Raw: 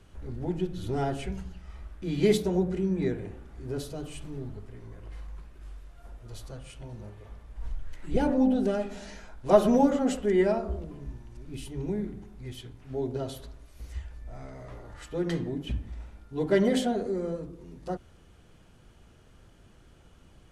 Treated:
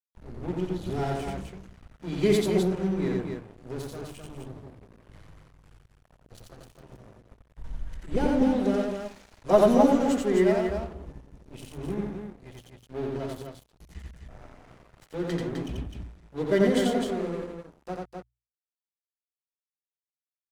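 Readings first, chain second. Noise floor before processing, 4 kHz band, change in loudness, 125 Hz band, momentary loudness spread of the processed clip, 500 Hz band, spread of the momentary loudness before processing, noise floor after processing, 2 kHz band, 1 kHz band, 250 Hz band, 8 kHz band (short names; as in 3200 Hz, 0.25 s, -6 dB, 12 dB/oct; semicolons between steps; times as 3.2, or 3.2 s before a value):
-56 dBFS, +1.5 dB, +2.0 dB, 0.0 dB, 21 LU, +2.0 dB, 21 LU, under -85 dBFS, +2.5 dB, +2.0 dB, +1.5 dB, +1.5 dB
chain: crossover distortion -40 dBFS; notches 60/120 Hz; loudspeakers at several distances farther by 30 m -2 dB, 88 m -5 dB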